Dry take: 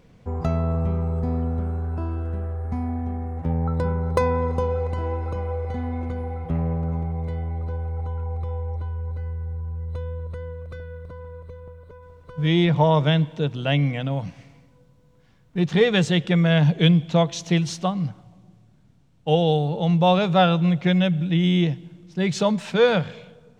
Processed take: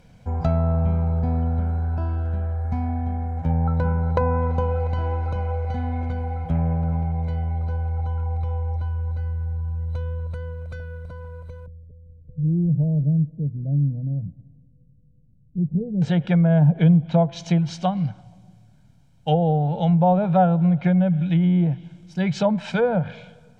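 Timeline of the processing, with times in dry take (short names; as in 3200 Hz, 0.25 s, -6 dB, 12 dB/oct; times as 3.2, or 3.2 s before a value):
11.66–16.02 Gaussian blur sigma 25 samples
whole clip: treble ducked by the level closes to 760 Hz, closed at -14.5 dBFS; high shelf 5800 Hz +5.5 dB; comb 1.3 ms, depth 54%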